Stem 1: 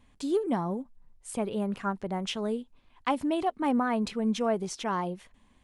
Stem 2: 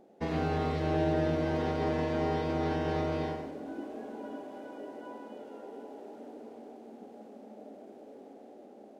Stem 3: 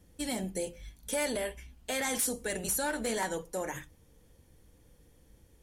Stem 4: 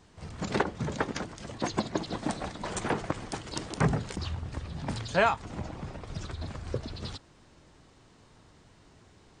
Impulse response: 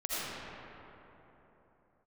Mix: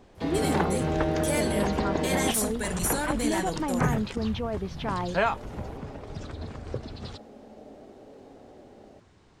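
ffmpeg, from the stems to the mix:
-filter_complex "[0:a]lowpass=frequency=4000:width=0.5412,lowpass=frequency=4000:width=1.3066,alimiter=limit=-23dB:level=0:latency=1,volume=0.5dB[link_01];[1:a]volume=1dB,asplit=3[link_02][link_03][link_04];[link_02]atrim=end=2.31,asetpts=PTS-STARTPTS,afade=type=out:start_time=2.306:duration=0.004:curve=hsin[link_05];[link_03]atrim=start=2.31:end=5.26,asetpts=PTS-STARTPTS,volume=0[link_06];[link_04]atrim=start=5.26,asetpts=PTS-STARTPTS,afade=type=in:duration=0.004:curve=hsin[link_07];[link_05][link_06][link_07]concat=n=3:v=0:a=1[link_08];[2:a]asubboost=boost=5.5:cutoff=190,adelay=150,volume=2.5dB[link_09];[3:a]highshelf=frequency=4600:gain=-6,volume=-0.5dB[link_10];[link_01][link_08][link_09][link_10]amix=inputs=4:normalize=0"

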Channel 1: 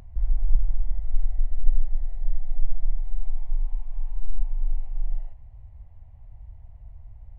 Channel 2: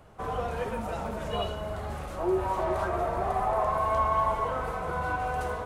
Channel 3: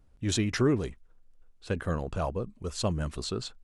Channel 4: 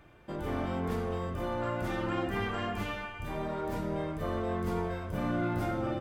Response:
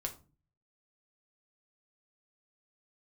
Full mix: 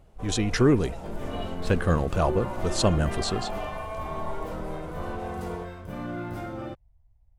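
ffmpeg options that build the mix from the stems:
-filter_complex "[0:a]volume=-18dB[link_01];[1:a]equalizer=frequency=1300:width_type=o:width=1.3:gain=-8.5,volume=-4.5dB[link_02];[2:a]dynaudnorm=framelen=230:gausssize=5:maxgain=8dB,volume=-1dB[link_03];[3:a]aeval=exprs='sgn(val(0))*max(abs(val(0))-0.00133,0)':channel_layout=same,adelay=750,volume=-2.5dB[link_04];[link_01][link_02][link_03][link_04]amix=inputs=4:normalize=0"

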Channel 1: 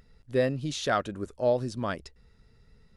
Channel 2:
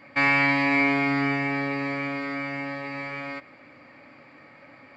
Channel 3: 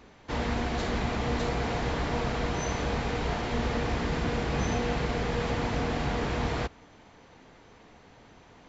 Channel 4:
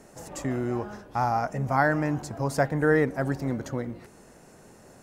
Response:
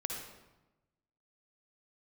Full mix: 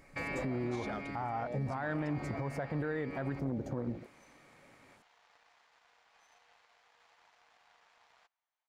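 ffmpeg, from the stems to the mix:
-filter_complex "[0:a]volume=-6.5dB[link_01];[1:a]volume=-13dB[link_02];[2:a]highpass=frequency=750:width=0.5412,highpass=frequency=750:width=1.3066,aeval=exprs='0.0668*(cos(1*acos(clip(val(0)/0.0668,-1,1)))-cos(1*PI/2))+0.0119*(cos(3*acos(clip(val(0)/0.0668,-1,1)))-cos(3*PI/2))+0.00119*(cos(7*acos(clip(val(0)/0.0668,-1,1)))-cos(7*PI/2))':channel_layout=same,adelay=1600,volume=-9dB[link_03];[3:a]volume=1.5dB[link_04];[link_03][link_04]amix=inputs=2:normalize=0,afwtdn=0.0178,alimiter=limit=-18dB:level=0:latency=1:release=274,volume=0dB[link_05];[link_01][link_02]amix=inputs=2:normalize=0,acompressor=threshold=-39dB:ratio=3,volume=0dB[link_06];[link_05][link_06]amix=inputs=2:normalize=0,alimiter=level_in=3dB:limit=-24dB:level=0:latency=1:release=109,volume=-3dB"

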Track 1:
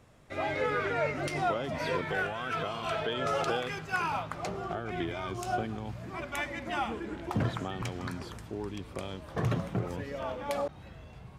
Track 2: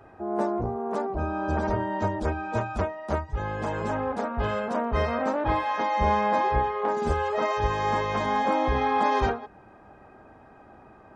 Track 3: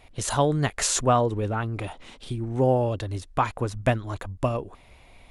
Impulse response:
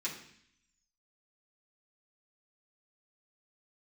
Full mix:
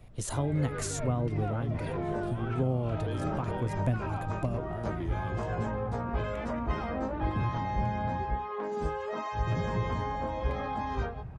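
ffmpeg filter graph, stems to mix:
-filter_complex "[0:a]aemphasis=mode=reproduction:type=riaa,asoftclip=type=tanh:threshold=-21dB,volume=-5.5dB,asplit=3[link_01][link_02][link_03];[link_01]atrim=end=8.26,asetpts=PTS-STARTPTS,afade=type=out:start_time=8.256:duration=0.004:curve=hsin[link_04];[link_02]atrim=start=8.26:end=9.47,asetpts=PTS-STARTPTS,volume=0[link_05];[link_03]atrim=start=9.47,asetpts=PTS-STARTPTS,afade=type=in:duration=0.004:curve=hsin[link_06];[link_04][link_05][link_06]concat=n=3:v=0:a=1[link_07];[1:a]flanger=delay=17:depth=3.5:speed=0.24,adelay=1750,volume=-1.5dB[link_08];[2:a]equalizer=frequency=2400:width=0.32:gain=-8.5,volume=-3dB,asplit=2[link_09][link_10];[link_10]apad=whole_len=569184[link_11];[link_08][link_11]sidechaincompress=threshold=-39dB:ratio=8:attack=16:release=104[link_12];[link_07][link_12][link_09]amix=inputs=3:normalize=0,acrossover=split=290[link_13][link_14];[link_14]acompressor=threshold=-33dB:ratio=6[link_15];[link_13][link_15]amix=inputs=2:normalize=0"

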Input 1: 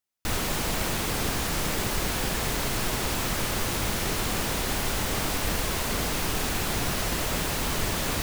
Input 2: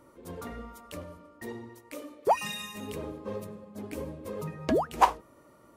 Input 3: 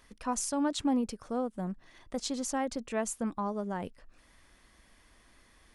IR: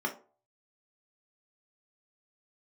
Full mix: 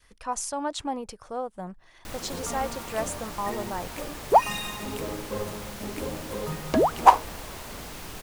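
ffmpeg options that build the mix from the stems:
-filter_complex "[0:a]adelay=1800,volume=-12dB[link_01];[1:a]adelay=2050,volume=3dB[link_02];[2:a]equalizer=frequency=240:width=1.7:gain=-10.5,volume=1.5dB[link_03];[link_01][link_02][link_03]amix=inputs=3:normalize=0,adynamicequalizer=threshold=0.01:dfrequency=830:dqfactor=1.5:tfrequency=830:tqfactor=1.5:attack=5:release=100:ratio=0.375:range=2.5:mode=boostabove:tftype=bell"

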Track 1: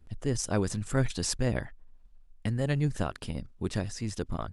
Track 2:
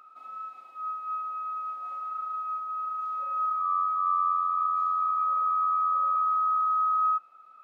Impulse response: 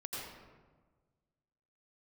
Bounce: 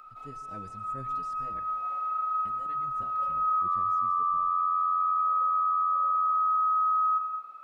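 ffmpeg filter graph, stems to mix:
-filter_complex "[0:a]asplit=2[link_01][link_02];[link_02]adelay=5.2,afreqshift=0.99[link_03];[link_01][link_03]amix=inputs=2:normalize=1,volume=-16dB,asplit=3[link_04][link_05][link_06];[link_05]volume=-15dB[link_07];[1:a]volume=1dB,asplit=2[link_08][link_09];[link_09]volume=-4.5dB[link_10];[link_06]apad=whole_len=336621[link_11];[link_08][link_11]sidechaincompress=threshold=-59dB:ratio=8:attack=37:release=123[link_12];[2:a]atrim=start_sample=2205[link_13];[link_07][link_10]amix=inputs=2:normalize=0[link_14];[link_14][link_13]afir=irnorm=-1:irlink=0[link_15];[link_04][link_12][link_15]amix=inputs=3:normalize=0,acrossover=split=2600[link_16][link_17];[link_17]acompressor=threshold=-59dB:ratio=4:attack=1:release=60[link_18];[link_16][link_18]amix=inputs=2:normalize=0,alimiter=limit=-21dB:level=0:latency=1:release=29"

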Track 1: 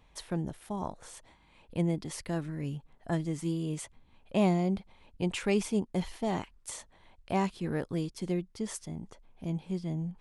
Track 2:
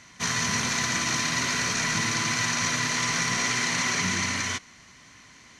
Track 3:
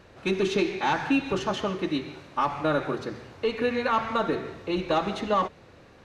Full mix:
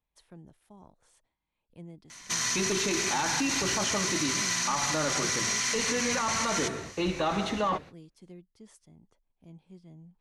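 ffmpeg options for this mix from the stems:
ffmpeg -i stem1.wav -i stem2.wav -i stem3.wav -filter_complex "[0:a]acrossover=split=390[link_01][link_02];[link_02]acompressor=threshold=-36dB:ratio=6[link_03];[link_01][link_03]amix=inputs=2:normalize=0,agate=range=-8dB:threshold=-55dB:ratio=16:detection=peak,volume=-16.5dB[link_04];[1:a]bass=frequency=250:gain=-7,treble=frequency=4000:gain=8,acompressor=threshold=-26dB:ratio=3,adelay=2100,volume=0dB[link_05];[2:a]agate=range=-37dB:threshold=-42dB:ratio=16:detection=peak,adelay=2300,volume=2dB[link_06];[link_05][link_06]amix=inputs=2:normalize=0,equalizer=frequency=410:width=1.5:gain=-4,alimiter=limit=-19.5dB:level=0:latency=1:release=11,volume=0dB[link_07];[link_04][link_07]amix=inputs=2:normalize=0" out.wav

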